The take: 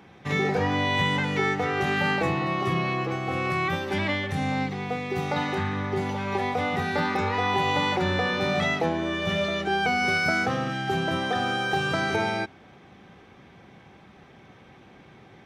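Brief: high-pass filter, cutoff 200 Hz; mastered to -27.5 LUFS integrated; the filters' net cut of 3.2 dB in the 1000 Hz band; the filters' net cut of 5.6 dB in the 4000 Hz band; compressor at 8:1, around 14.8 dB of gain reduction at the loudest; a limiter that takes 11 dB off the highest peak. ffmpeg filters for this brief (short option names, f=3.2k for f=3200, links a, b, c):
-af "highpass=200,equalizer=f=1k:t=o:g=-4,equalizer=f=4k:t=o:g=-7.5,acompressor=threshold=-39dB:ratio=8,volume=20dB,alimiter=limit=-19dB:level=0:latency=1"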